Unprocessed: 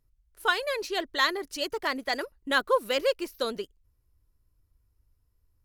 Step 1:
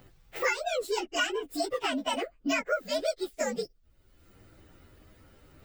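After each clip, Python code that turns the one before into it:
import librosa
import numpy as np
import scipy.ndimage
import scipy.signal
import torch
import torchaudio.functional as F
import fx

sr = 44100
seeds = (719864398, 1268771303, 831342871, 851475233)

y = fx.partial_stretch(x, sr, pct=121)
y = fx.peak_eq(y, sr, hz=11000.0, db=-10.0, octaves=1.1)
y = fx.band_squash(y, sr, depth_pct=100)
y = y * 10.0 ** (2.5 / 20.0)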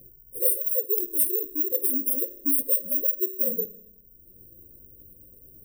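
y = fx.rev_fdn(x, sr, rt60_s=0.88, lf_ratio=1.5, hf_ratio=0.4, size_ms=16.0, drr_db=14.5)
y = (np.kron(scipy.signal.resample_poly(y, 1, 6), np.eye(6)[0]) * 6)[:len(y)]
y = fx.brickwall_bandstop(y, sr, low_hz=580.0, high_hz=8600.0)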